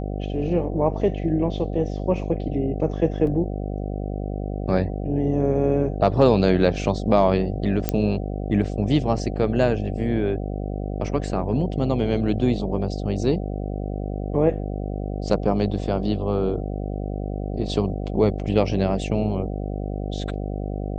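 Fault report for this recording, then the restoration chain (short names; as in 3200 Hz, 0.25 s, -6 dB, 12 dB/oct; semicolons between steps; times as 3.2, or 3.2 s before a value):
buzz 50 Hz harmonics 15 -28 dBFS
3.27 gap 2.3 ms
7.89 pop -6 dBFS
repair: de-click; de-hum 50 Hz, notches 15; interpolate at 3.27, 2.3 ms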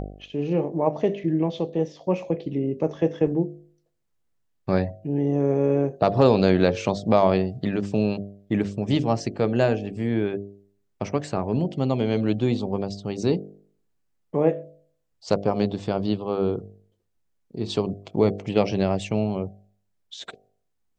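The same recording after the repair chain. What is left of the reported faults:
none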